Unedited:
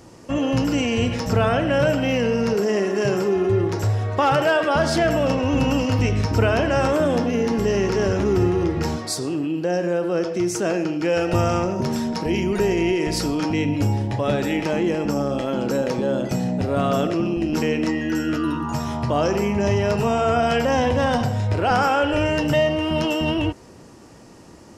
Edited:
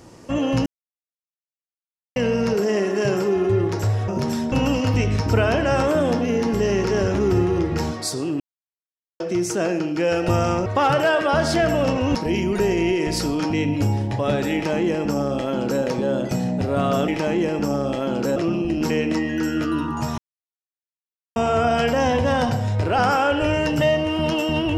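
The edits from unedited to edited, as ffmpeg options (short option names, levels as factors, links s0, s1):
-filter_complex "[0:a]asplit=13[s0][s1][s2][s3][s4][s5][s6][s7][s8][s9][s10][s11][s12];[s0]atrim=end=0.66,asetpts=PTS-STARTPTS,afade=t=out:st=0.656:d=0.004:c=hsin[s13];[s1]atrim=start=0.66:end=2.16,asetpts=PTS-STARTPTS,volume=0[s14];[s2]atrim=start=2.16:end=4.082,asetpts=PTS-STARTPTS,afade=t=in:d=0.004:c=hsin[s15];[s3]atrim=start=11.708:end=12.152[s16];[s4]atrim=start=5.568:end=9.45,asetpts=PTS-STARTPTS,afade=t=out:st=3.878:d=0.004:c=hsin[s17];[s5]atrim=start=9.45:end=10.25,asetpts=PTS-STARTPTS,volume=0[s18];[s6]atrim=start=10.25:end=11.712,asetpts=PTS-STARTPTS,afade=t=in:d=0.004:c=hsin[s19];[s7]atrim=start=4.078:end=5.572[s20];[s8]atrim=start=12.148:end=17.082[s21];[s9]atrim=start=14.538:end=15.822[s22];[s10]atrim=start=17.078:end=18.9,asetpts=PTS-STARTPTS,afade=t=out:st=1.818:d=0.004:c=hsin[s23];[s11]atrim=start=18.9:end=20.08,asetpts=PTS-STARTPTS,volume=0[s24];[s12]atrim=start=20.08,asetpts=PTS-STARTPTS,afade=t=in:d=0.004:c=hsin[s25];[s13][s14][s15]concat=n=3:v=0:a=1[s26];[s26][s16]acrossfade=d=0.004:c1=hsin:c2=hsin[s27];[s17][s18][s19]concat=n=3:v=0:a=1[s28];[s27][s28]acrossfade=d=0.004:c1=hsin:c2=hsin[s29];[s29][s20]acrossfade=d=0.004:c1=hsin:c2=hsin[s30];[s30][s21]acrossfade=d=0.004:c1=hsin:c2=hsin[s31];[s31][s22]acrossfade=d=0.004:c1=hsin:c2=hsin[s32];[s23][s24][s25]concat=n=3:v=0:a=1[s33];[s32][s33]acrossfade=d=0.004:c1=hsin:c2=hsin"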